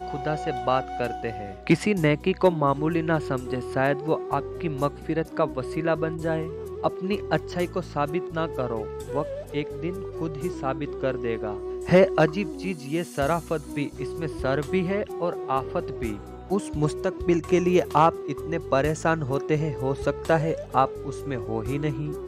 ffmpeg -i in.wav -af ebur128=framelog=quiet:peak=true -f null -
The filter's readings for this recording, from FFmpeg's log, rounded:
Integrated loudness:
  I:         -26.1 LUFS
  Threshold: -36.1 LUFS
Loudness range:
  LRA:         5.0 LU
  Threshold: -46.1 LUFS
  LRA low:   -29.0 LUFS
  LRA high:  -24.0 LUFS
True peak:
  Peak:       -6.4 dBFS